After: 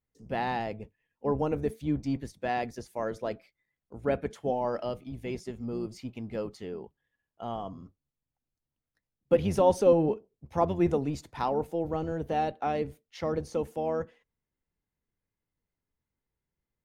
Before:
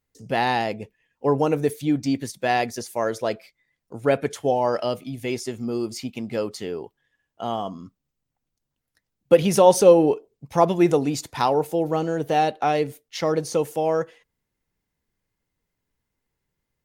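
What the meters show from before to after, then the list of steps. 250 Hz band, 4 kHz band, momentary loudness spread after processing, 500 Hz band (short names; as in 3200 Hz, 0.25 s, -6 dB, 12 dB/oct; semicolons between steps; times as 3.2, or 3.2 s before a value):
-7.5 dB, -13.5 dB, 13 LU, -8.0 dB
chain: octaver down 1 oct, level -5 dB; high shelf 3600 Hz -11 dB; gain -8 dB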